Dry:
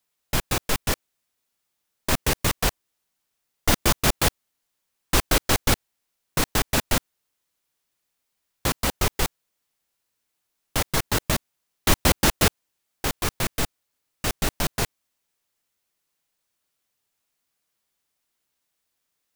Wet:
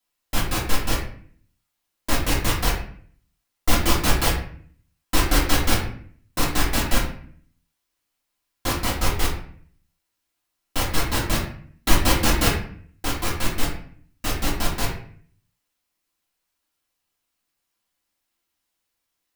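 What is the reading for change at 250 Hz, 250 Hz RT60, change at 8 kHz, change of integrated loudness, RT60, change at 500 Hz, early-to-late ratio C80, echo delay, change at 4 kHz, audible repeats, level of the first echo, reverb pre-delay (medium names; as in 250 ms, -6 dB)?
+2.0 dB, 0.75 s, -1.0 dB, +0.5 dB, 0.55 s, -0.5 dB, 8.5 dB, no echo, +0.5 dB, no echo, no echo, 3 ms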